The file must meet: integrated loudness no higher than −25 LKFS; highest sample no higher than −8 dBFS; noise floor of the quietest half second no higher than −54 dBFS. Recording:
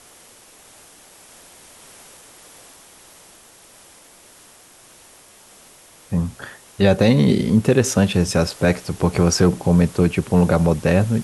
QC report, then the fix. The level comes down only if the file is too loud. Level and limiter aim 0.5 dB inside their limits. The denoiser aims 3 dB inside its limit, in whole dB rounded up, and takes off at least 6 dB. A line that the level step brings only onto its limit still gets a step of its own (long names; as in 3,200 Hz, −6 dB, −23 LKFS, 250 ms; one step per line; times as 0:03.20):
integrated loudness −18.0 LKFS: out of spec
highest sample −3.0 dBFS: out of spec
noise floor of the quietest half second −48 dBFS: out of spec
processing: level −7.5 dB